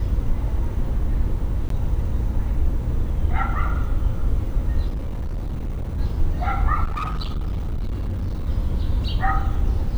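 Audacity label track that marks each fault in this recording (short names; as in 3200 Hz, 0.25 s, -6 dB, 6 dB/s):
1.690000	1.700000	gap 13 ms
4.890000	5.990000	clipped -23 dBFS
6.840000	8.470000	clipped -22 dBFS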